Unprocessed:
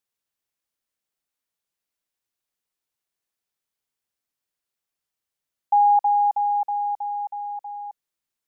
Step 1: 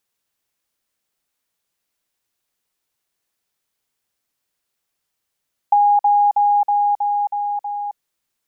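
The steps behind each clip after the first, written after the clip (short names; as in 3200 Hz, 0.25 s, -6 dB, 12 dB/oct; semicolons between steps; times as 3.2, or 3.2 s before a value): compressor, threshold -21 dBFS, peak gain reduction 6.5 dB; gain +8.5 dB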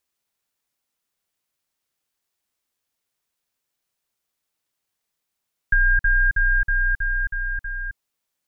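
ring modulator 790 Hz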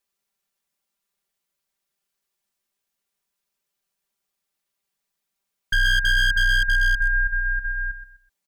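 comb 5.1 ms, depth 84%; on a send: feedback echo 0.126 s, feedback 29%, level -11.5 dB; on the sum: wavefolder -9.5 dBFS; gain -3.5 dB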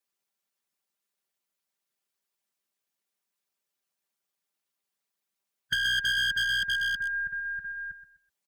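HPF 110 Hz 12 dB/oct; dynamic EQ 3200 Hz, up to +6 dB, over -40 dBFS, Q 1.5; harmonic-percussive split harmonic -9 dB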